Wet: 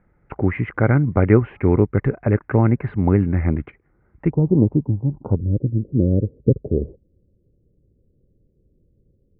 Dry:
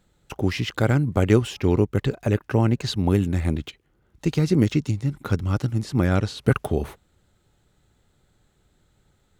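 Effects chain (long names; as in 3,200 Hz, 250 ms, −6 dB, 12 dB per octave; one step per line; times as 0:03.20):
Chebyshev low-pass filter 2,200 Hz, order 5, from 0:04.29 960 Hz, from 0:05.36 530 Hz
level +4 dB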